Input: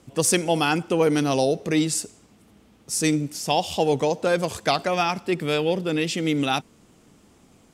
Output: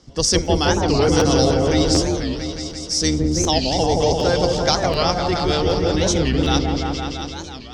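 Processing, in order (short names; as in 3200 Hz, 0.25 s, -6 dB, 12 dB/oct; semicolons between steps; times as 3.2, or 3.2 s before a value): octaver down 2 oct, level -1 dB; synth low-pass 5300 Hz, resonance Q 4.4; notch 2500 Hz, Q 6; on a send: repeats that get brighter 0.17 s, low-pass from 750 Hz, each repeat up 1 oct, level 0 dB; on the sum: crackling interface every 0.75 s, samples 512, repeat, from 0.44; record warp 45 rpm, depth 250 cents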